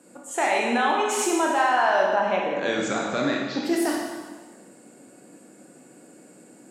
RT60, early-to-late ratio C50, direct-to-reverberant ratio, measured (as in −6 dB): 1.4 s, 1.0 dB, −1.5 dB